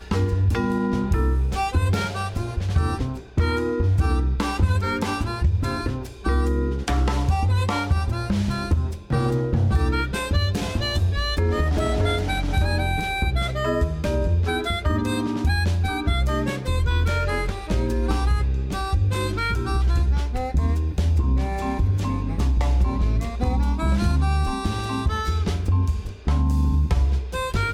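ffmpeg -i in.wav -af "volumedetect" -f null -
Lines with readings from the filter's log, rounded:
mean_volume: -21.4 dB
max_volume: -9.1 dB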